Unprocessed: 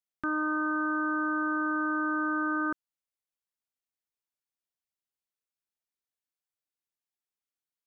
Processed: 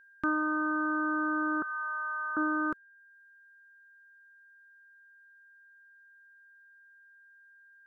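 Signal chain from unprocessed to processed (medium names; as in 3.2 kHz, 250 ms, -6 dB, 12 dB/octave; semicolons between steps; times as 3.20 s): 1.62–2.37 s: Bessel high-pass 1.1 kHz, order 6; reverb removal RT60 0.75 s; whistle 1.6 kHz -58 dBFS; trim +2 dB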